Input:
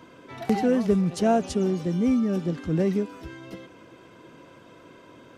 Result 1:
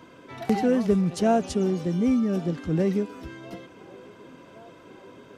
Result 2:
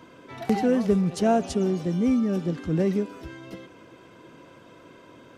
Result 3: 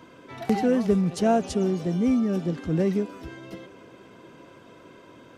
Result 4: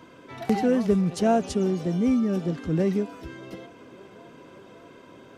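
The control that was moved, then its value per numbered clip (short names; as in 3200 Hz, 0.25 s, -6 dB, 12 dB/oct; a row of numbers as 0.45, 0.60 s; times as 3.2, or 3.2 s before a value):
band-limited delay, time: 1102, 62, 284, 583 ms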